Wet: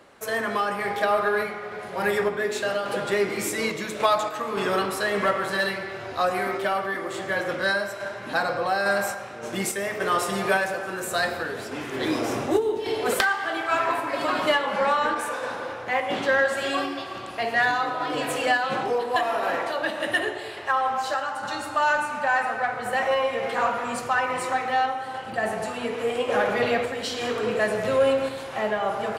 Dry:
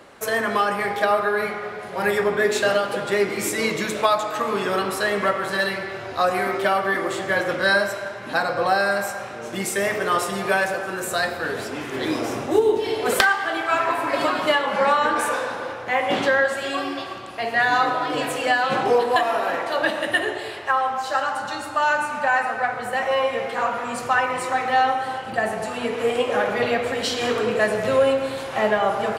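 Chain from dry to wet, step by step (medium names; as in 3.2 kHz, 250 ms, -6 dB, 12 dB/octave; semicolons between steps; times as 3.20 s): random-step tremolo; in parallel at -7 dB: saturation -21.5 dBFS, distortion -11 dB; on the sum: trim -2.5 dB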